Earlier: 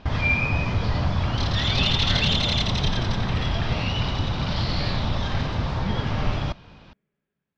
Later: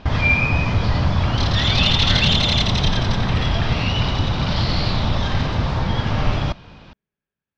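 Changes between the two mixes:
speech: send -9.5 dB; background +5.0 dB

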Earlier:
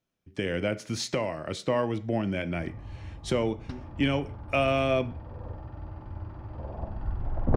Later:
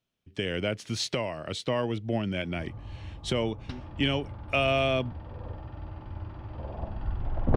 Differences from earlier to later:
speech: send off; master: add peaking EQ 3.2 kHz +8 dB 1.1 oct

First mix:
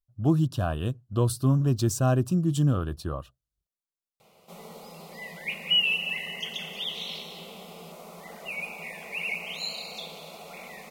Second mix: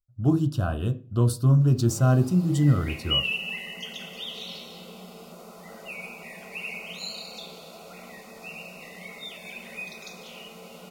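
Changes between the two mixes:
background: entry -2.60 s; reverb: on, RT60 0.40 s

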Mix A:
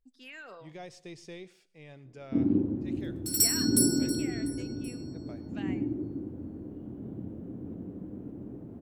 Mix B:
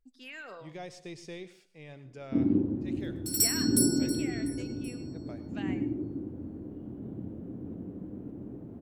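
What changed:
speech: send +7.5 dB; second sound: send -8.0 dB

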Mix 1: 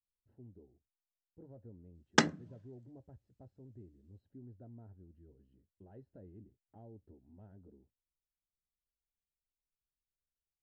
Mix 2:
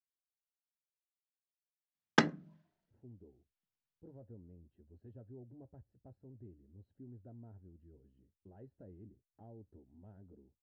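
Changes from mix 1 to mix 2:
speech: entry +2.65 s; master: add distance through air 130 m

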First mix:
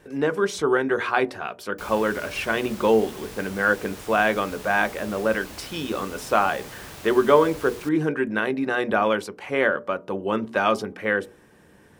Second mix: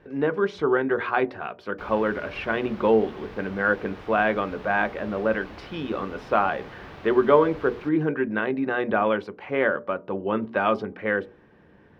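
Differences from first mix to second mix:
background: send on; master: add distance through air 310 m

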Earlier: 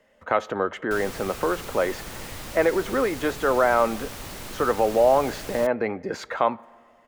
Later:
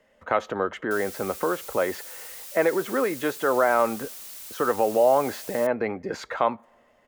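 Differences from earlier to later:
speech: send -9.5 dB; background: add pre-emphasis filter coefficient 0.97

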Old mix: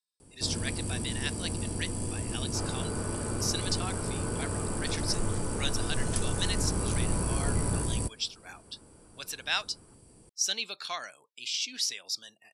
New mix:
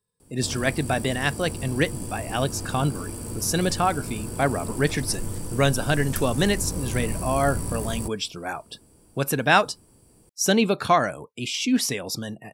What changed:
speech: remove band-pass filter 4.6 kHz, Q 1.7; first sound: remove brick-wall FIR low-pass 11 kHz; second sound -11.0 dB

